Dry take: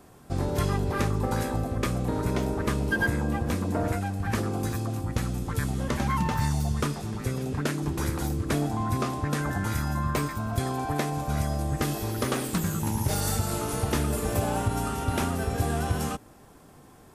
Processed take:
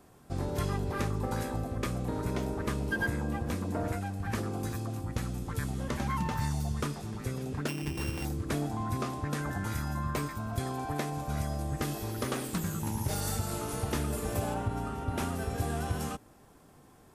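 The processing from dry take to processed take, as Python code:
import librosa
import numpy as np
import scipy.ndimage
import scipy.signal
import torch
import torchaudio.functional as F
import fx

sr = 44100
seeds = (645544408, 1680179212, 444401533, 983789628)

y = fx.sample_sort(x, sr, block=16, at=(7.68, 8.25))
y = fx.high_shelf(y, sr, hz=fx.line((14.53, 4600.0), (15.17, 2500.0)), db=-12.0, at=(14.53, 15.17), fade=0.02)
y = F.gain(torch.from_numpy(y), -5.5).numpy()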